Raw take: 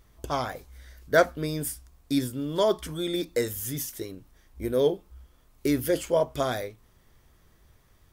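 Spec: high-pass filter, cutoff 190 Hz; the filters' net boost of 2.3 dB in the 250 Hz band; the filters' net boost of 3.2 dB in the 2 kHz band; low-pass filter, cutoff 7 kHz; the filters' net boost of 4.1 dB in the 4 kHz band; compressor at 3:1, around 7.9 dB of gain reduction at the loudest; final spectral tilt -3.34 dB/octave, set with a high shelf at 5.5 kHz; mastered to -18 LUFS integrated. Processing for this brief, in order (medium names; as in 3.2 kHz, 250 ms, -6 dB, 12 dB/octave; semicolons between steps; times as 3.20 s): high-pass 190 Hz; low-pass 7 kHz; peaking EQ 250 Hz +4 dB; peaking EQ 2 kHz +4 dB; peaking EQ 4 kHz +6.5 dB; treble shelf 5.5 kHz -7 dB; compression 3:1, threshold -23 dBFS; trim +12.5 dB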